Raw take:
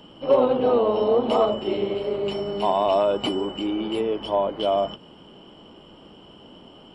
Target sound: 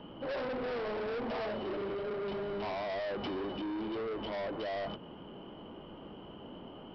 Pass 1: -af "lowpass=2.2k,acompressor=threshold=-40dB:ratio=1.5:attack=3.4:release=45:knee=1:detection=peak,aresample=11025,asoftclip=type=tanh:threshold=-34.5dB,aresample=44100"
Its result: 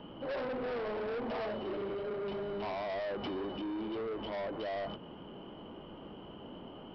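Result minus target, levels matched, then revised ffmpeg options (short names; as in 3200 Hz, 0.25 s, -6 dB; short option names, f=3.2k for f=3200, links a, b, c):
compressor: peak gain reduction +3 dB
-af "lowpass=2.2k,acompressor=threshold=-31.5dB:ratio=1.5:attack=3.4:release=45:knee=1:detection=peak,aresample=11025,asoftclip=type=tanh:threshold=-34.5dB,aresample=44100"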